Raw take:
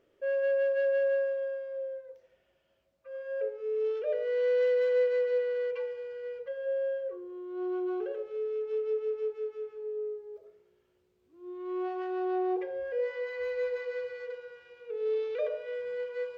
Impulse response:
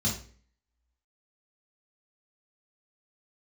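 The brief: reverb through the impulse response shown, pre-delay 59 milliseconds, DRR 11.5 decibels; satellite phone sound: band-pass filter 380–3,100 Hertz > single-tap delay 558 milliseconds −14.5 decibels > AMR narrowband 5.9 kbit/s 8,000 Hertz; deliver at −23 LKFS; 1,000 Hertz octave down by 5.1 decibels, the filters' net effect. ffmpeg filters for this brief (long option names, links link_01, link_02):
-filter_complex "[0:a]equalizer=frequency=1000:width_type=o:gain=-8,asplit=2[link_01][link_02];[1:a]atrim=start_sample=2205,adelay=59[link_03];[link_02][link_03]afir=irnorm=-1:irlink=0,volume=-18dB[link_04];[link_01][link_04]amix=inputs=2:normalize=0,highpass=380,lowpass=3100,aecho=1:1:558:0.188,volume=12.5dB" -ar 8000 -c:a libopencore_amrnb -b:a 5900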